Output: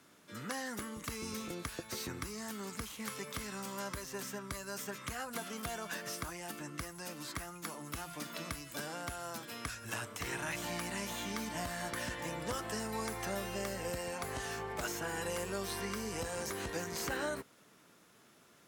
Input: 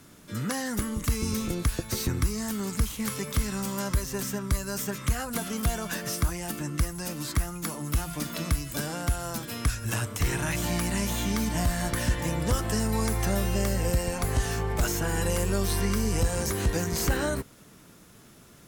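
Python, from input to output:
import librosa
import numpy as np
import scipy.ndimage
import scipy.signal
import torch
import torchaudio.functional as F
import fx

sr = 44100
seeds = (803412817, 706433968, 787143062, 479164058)

y = fx.highpass(x, sr, hz=510.0, slope=6)
y = fx.high_shelf(y, sr, hz=5300.0, db=-7.5)
y = y * librosa.db_to_amplitude(-5.0)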